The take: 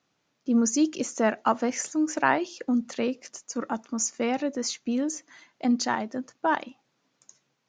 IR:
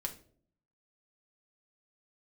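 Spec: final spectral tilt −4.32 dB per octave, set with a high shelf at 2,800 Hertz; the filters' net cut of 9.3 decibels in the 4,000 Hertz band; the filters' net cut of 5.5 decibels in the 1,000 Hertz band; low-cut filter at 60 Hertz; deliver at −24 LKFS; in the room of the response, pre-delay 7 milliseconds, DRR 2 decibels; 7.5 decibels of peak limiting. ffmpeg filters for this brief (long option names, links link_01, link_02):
-filter_complex "[0:a]highpass=60,equalizer=frequency=1000:width_type=o:gain=-6,highshelf=frequency=2800:gain=-4.5,equalizer=frequency=4000:width_type=o:gain=-8.5,alimiter=limit=-19dB:level=0:latency=1,asplit=2[link_01][link_02];[1:a]atrim=start_sample=2205,adelay=7[link_03];[link_02][link_03]afir=irnorm=-1:irlink=0,volume=-2dB[link_04];[link_01][link_04]amix=inputs=2:normalize=0,volume=5dB"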